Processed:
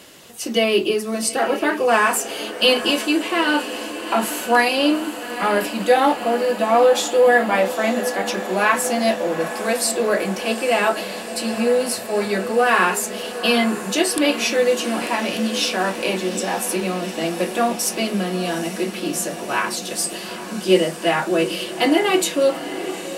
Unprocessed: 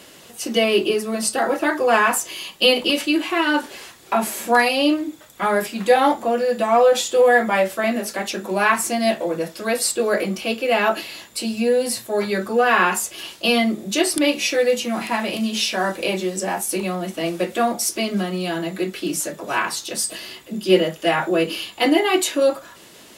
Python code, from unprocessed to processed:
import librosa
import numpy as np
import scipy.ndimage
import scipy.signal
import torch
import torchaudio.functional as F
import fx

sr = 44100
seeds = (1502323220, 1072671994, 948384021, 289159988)

y = fx.echo_diffused(x, sr, ms=837, feedback_pct=75, wet_db=-12.5)